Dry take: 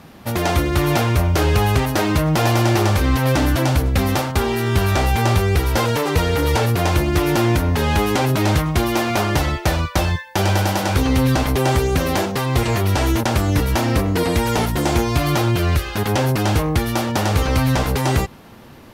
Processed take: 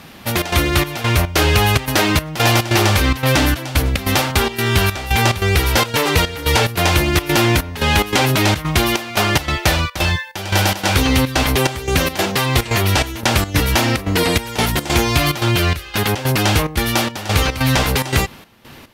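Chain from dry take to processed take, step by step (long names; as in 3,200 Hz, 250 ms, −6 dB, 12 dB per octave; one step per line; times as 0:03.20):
high-shelf EQ 6,400 Hz +7 dB
gate pattern "xxxx.xxx..xx." 144 BPM −12 dB
parametric band 2,800 Hz +7.5 dB 2 octaves
level +1 dB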